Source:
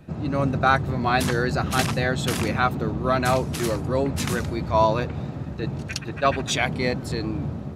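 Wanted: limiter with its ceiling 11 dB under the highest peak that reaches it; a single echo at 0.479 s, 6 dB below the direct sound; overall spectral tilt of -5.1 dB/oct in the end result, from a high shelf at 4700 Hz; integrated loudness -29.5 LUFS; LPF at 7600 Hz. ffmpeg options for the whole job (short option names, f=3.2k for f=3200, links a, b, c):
-af "lowpass=7.6k,highshelf=f=4.7k:g=6,alimiter=limit=-15.5dB:level=0:latency=1,aecho=1:1:479:0.501,volume=-3.5dB"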